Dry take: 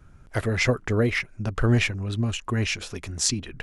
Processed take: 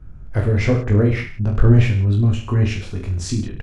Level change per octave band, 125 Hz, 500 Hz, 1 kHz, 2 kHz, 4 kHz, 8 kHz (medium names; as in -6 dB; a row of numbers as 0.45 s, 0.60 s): +10.5 dB, +4.5 dB, +1.0 dB, -2.0 dB, -5.0 dB, no reading